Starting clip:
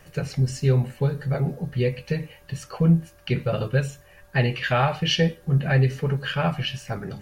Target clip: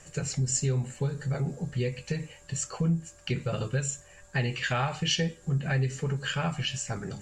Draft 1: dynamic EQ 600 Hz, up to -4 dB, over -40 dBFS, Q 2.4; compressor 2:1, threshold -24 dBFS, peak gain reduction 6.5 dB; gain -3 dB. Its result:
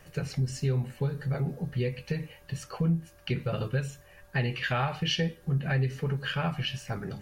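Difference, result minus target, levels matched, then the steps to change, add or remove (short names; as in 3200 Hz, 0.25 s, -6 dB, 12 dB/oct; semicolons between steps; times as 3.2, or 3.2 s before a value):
8000 Hz band -13.0 dB
add after compressor: synth low-pass 7400 Hz, resonance Q 15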